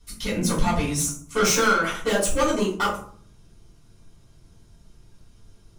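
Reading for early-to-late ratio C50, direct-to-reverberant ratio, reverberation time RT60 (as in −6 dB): 6.5 dB, −7.5 dB, 0.55 s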